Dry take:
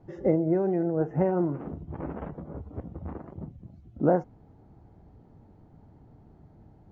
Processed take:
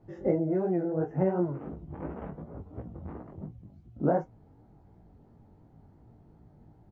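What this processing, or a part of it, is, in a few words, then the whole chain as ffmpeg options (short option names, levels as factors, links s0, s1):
double-tracked vocal: -filter_complex "[0:a]asplit=2[s0][s1];[s1]adelay=26,volume=0.2[s2];[s0][s2]amix=inputs=2:normalize=0,flanger=delay=16.5:depth=5.1:speed=2.8"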